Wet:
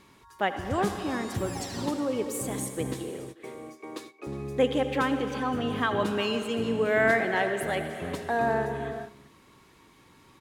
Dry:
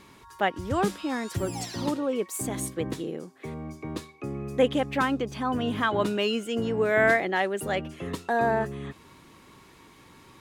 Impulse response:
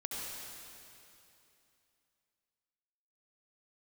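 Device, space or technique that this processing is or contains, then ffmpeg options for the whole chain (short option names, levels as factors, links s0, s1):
keyed gated reverb: -filter_complex "[0:a]asettb=1/sr,asplit=3[s0][s1][s2];[s0]atrim=end=2.944[s3];[s1]atrim=start=2.94:end=4.27,asetpts=PTS-STARTPTS,afade=t=in:d=0.004:c=qsin,afade=t=out:st=1.326:d=0.004:c=qsin,highpass=f=310:w=0.5412,highpass=f=310:w=1.3066[s4];[s2]atrim=start=4.266[s5];[s3][s4]acrossfade=d=0.004:c1=hsin:c2=qsin[s6];[s6][s5]acrossfade=d=0.004:c1=qsin:c2=hsin,asplit=2[s7][s8];[s8]adelay=361.5,volume=0.2,highshelf=f=4000:g=-8.13[s9];[s7][s9]amix=inputs=2:normalize=0,asplit=3[s10][s11][s12];[1:a]atrim=start_sample=2205[s13];[s11][s13]afir=irnorm=-1:irlink=0[s14];[s12]apad=whole_len=474882[s15];[s14][s15]sidechaingate=range=0.0224:threshold=0.00631:ratio=16:detection=peak,volume=0.531[s16];[s10][s16]amix=inputs=2:normalize=0,volume=0.596"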